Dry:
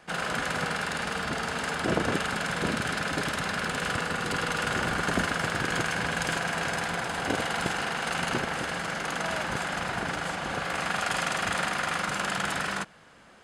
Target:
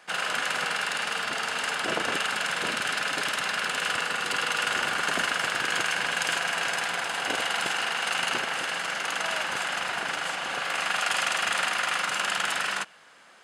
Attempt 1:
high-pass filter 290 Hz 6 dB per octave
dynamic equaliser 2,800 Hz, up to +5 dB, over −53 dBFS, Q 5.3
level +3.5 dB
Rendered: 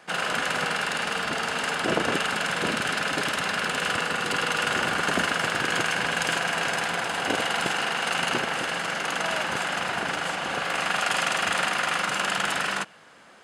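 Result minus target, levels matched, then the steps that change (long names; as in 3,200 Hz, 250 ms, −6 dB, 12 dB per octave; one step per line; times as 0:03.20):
250 Hz band +7.0 dB
change: high-pass filter 990 Hz 6 dB per octave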